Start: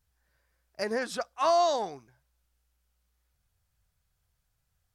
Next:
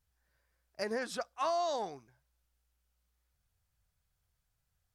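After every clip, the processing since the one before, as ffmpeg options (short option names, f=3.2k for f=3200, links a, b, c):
-af "acompressor=threshold=-25dB:ratio=6,volume=-4dB"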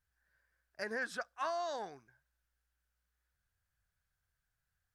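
-af "equalizer=f=1.6k:w=2.8:g=12.5,volume=-6dB"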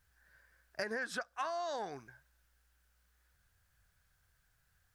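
-af "acompressor=threshold=-46dB:ratio=10,volume=11dB"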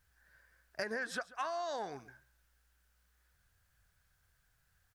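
-af "aecho=1:1:138:0.112"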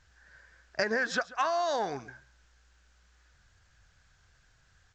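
-af "volume=9dB" -ar 16000 -c:a pcm_alaw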